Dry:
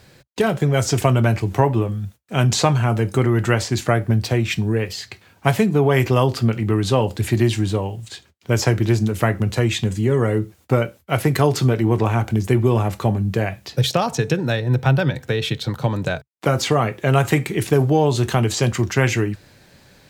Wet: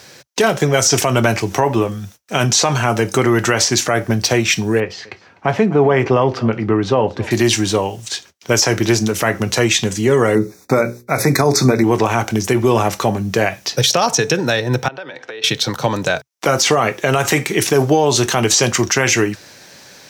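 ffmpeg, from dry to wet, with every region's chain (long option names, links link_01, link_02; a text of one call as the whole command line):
ffmpeg -i in.wav -filter_complex "[0:a]asettb=1/sr,asplit=3[link_01][link_02][link_03];[link_01]atrim=end=4.804[link_04];[link_02]atrim=start=4.8:end=7.31,asetpts=PTS-STARTPTS,afade=type=in:duration=0.004:curve=qsin,afade=type=out:start_time=2.506:duration=0.004:curve=qsin,lowpass=frequency=2000:poles=1,aemphasis=mode=reproduction:type=75kf,aecho=1:1:250:0.0794,atrim=end_sample=110691[link_05];[link_03]atrim=start=7.306[link_06];[link_04][link_05]acrossfade=duration=0.004:curve1=hsin:curve2=qsin[link_07];[link_07][link_06]acrossfade=duration=0.004:curve1=qsin:curve2=hsin,asettb=1/sr,asplit=3[link_08][link_09][link_10];[link_08]atrim=end=10.354[link_11];[link_09]atrim=start=10.35:end=11.84,asetpts=PTS-STARTPTS,afade=type=in:duration=0.004:curve=qsin,afade=type=out:start_time=1.486:duration=0.004:curve=qsin,asuperstop=centerf=3000:order=12:qfactor=3,equalizer=frequency=200:width=1:gain=6.5,bandreject=frequency=60:width_type=h:width=6,bandreject=frequency=120:width_type=h:width=6,bandreject=frequency=180:width_type=h:width=6,bandreject=frequency=240:width_type=h:width=6,bandreject=frequency=300:width_type=h:width=6,bandreject=frequency=360:width_type=h:width=6,bandreject=frequency=420:width_type=h:width=6,bandreject=frequency=480:width_type=h:width=6,bandreject=frequency=540:width_type=h:width=6[link_12];[link_10]atrim=start=11.836[link_13];[link_11][link_12]acrossfade=duration=0.004:curve1=hsin:curve2=qsin[link_14];[link_14][link_13]acrossfade=duration=0.004:curve1=qsin:curve2=hsin,asettb=1/sr,asplit=3[link_15][link_16][link_17];[link_15]atrim=end=14.884[link_18];[link_16]atrim=start=14.88:end=15.44,asetpts=PTS-STARTPTS,afade=type=in:duration=0.004:curve=qsin,afade=type=out:start_time=0.556:duration=0.004:curve=qsin,lowpass=6600,acrossover=split=270 3900:gain=0.1 1 0.158[link_19][link_20][link_21];[link_19][link_20][link_21]amix=inputs=3:normalize=0,acompressor=threshold=-34dB:ratio=12:attack=3.2:release=140:knee=1:detection=peak[link_22];[link_17]atrim=start=15.436[link_23];[link_18][link_22]acrossfade=duration=0.004:curve1=hsin:curve2=qsin[link_24];[link_24][link_23]acrossfade=duration=0.004:curve1=qsin:curve2=hsin,highpass=frequency=450:poles=1,equalizer=frequency=5800:width=3.6:gain=10,alimiter=level_in=13dB:limit=-1dB:release=50:level=0:latency=1,volume=-3dB" out.wav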